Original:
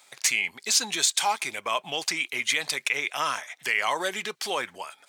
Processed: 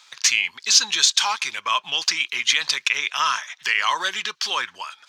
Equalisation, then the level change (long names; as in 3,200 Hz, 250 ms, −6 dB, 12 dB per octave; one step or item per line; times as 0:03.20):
low-shelf EQ 110 Hz +6.5 dB
flat-topped bell 1,300 Hz +13.5 dB 1.2 octaves
flat-topped bell 4,000 Hz +15.5 dB
−7.0 dB